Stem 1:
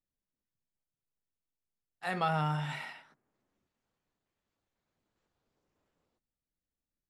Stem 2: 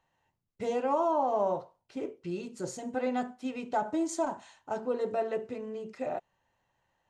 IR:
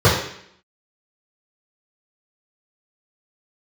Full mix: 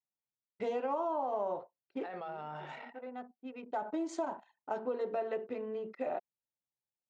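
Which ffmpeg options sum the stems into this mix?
-filter_complex "[0:a]equalizer=frequency=580:width=1:gain=10.5,alimiter=level_in=1dB:limit=-24dB:level=0:latency=1:release=11,volume=-1dB,volume=-8.5dB,asplit=2[link_01][link_02];[1:a]volume=1dB[link_03];[link_02]apad=whole_len=313000[link_04];[link_03][link_04]sidechaincompress=threshold=-56dB:ratio=10:attack=7.6:release=1160[link_05];[link_01][link_05]amix=inputs=2:normalize=0,anlmdn=0.01,highpass=250,lowpass=3900,acompressor=threshold=-32dB:ratio=4"

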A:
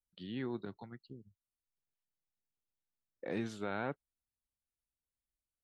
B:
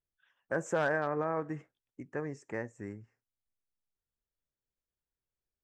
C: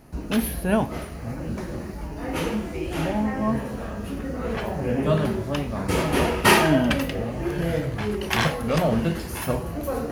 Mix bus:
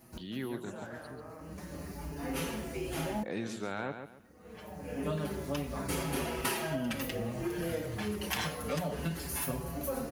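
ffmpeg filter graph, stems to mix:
ffmpeg -i stem1.wav -i stem2.wav -i stem3.wav -filter_complex "[0:a]volume=1.5dB,asplit=3[link_01][link_02][link_03];[link_02]volume=-9dB[link_04];[1:a]flanger=delay=17.5:depth=7.8:speed=1.7,volume=-15dB,asplit=2[link_05][link_06];[link_06]volume=-5dB[link_07];[2:a]bandreject=frequency=50:width_type=h:width=6,bandreject=frequency=100:width_type=h:width=6,asplit=2[link_08][link_09];[link_09]adelay=5.8,afreqshift=-0.28[link_10];[link_08][link_10]amix=inputs=2:normalize=1,volume=-4.5dB[link_11];[link_03]apad=whole_len=446164[link_12];[link_11][link_12]sidechaincompress=threshold=-57dB:ratio=16:attack=6.1:release=667[link_13];[link_04][link_07]amix=inputs=2:normalize=0,aecho=0:1:138|276|414|552:1|0.27|0.0729|0.0197[link_14];[link_01][link_05][link_13][link_14]amix=inputs=4:normalize=0,highpass=53,highshelf=frequency=5700:gain=10.5,acompressor=threshold=-30dB:ratio=10" out.wav

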